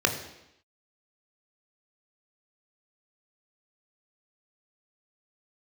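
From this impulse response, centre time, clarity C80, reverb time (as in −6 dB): 20 ms, 11.0 dB, 0.85 s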